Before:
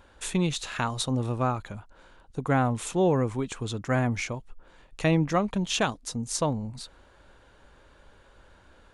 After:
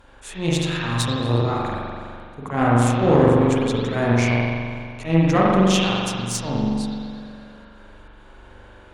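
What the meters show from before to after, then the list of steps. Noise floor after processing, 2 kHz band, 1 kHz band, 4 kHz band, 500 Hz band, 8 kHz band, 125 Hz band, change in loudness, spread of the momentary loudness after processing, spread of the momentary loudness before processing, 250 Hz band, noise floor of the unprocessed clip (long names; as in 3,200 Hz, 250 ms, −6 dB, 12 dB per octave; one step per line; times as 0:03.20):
−46 dBFS, +7.0 dB, +7.0 dB, +7.0 dB, +8.0 dB, +3.0 dB, +8.0 dB, +7.5 dB, 17 LU, 13 LU, +8.5 dB, −57 dBFS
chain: volume swells 139 ms
spring reverb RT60 2.1 s, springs 42 ms, chirp 80 ms, DRR −6 dB
harmonic generator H 4 −16 dB, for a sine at −7 dBFS
level +3 dB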